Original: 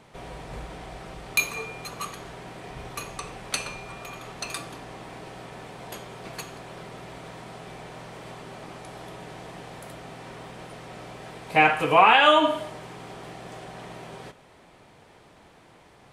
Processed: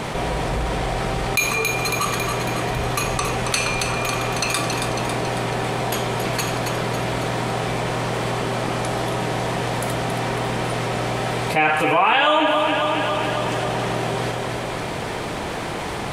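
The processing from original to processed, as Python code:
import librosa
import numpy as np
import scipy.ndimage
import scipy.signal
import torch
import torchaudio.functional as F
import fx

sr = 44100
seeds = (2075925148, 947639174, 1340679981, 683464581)

p1 = x + fx.echo_feedback(x, sr, ms=275, feedback_pct=53, wet_db=-10, dry=0)
p2 = fx.env_flatten(p1, sr, amount_pct=70)
y = p2 * librosa.db_to_amplitude(-2.5)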